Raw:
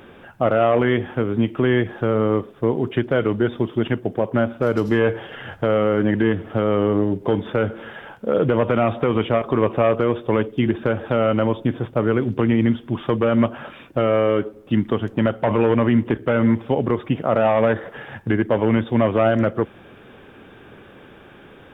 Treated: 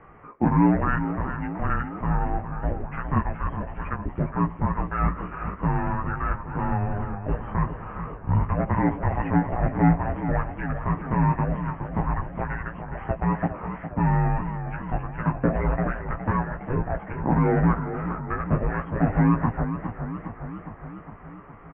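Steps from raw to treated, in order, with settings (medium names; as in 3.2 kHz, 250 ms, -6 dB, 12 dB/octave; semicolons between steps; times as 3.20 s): bass shelf 400 Hz -10 dB; doubling 16 ms -3 dB; mistuned SSB -400 Hz 420–2400 Hz; distance through air 210 m; modulated delay 412 ms, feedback 65%, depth 106 cents, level -10 dB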